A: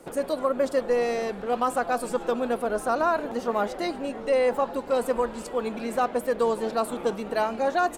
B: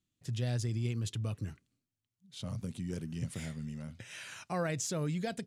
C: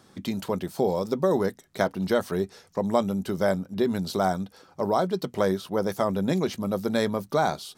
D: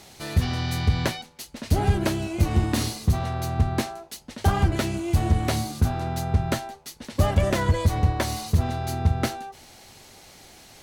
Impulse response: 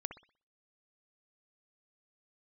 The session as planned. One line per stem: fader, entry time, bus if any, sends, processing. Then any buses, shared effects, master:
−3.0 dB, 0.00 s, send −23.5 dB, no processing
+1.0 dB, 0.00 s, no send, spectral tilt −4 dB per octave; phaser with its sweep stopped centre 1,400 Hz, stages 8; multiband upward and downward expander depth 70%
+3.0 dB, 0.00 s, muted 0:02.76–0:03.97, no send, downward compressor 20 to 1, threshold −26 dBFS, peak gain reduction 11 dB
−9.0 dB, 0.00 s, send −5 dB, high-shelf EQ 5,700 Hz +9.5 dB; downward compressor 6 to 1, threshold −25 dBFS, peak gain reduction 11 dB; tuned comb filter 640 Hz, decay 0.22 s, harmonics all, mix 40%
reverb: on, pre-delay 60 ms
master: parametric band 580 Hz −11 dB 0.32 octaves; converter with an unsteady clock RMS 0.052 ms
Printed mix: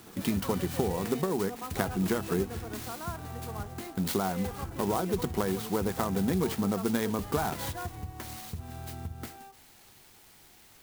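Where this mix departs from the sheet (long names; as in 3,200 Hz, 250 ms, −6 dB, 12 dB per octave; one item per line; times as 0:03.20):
stem A −3.0 dB → −15.0 dB
stem B: muted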